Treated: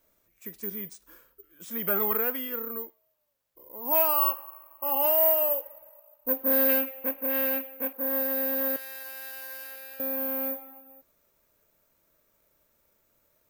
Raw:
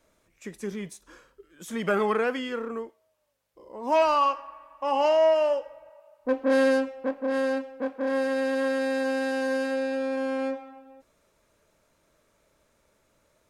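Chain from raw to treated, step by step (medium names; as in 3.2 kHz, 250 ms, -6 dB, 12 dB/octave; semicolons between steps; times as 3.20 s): 6.69–7.93 s: peaking EQ 2.5 kHz +12.5 dB 0.81 oct; 8.76–10.00 s: Bessel high-pass 1.8 kHz, order 2; careless resampling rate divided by 3×, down none, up zero stuff; trim -6.5 dB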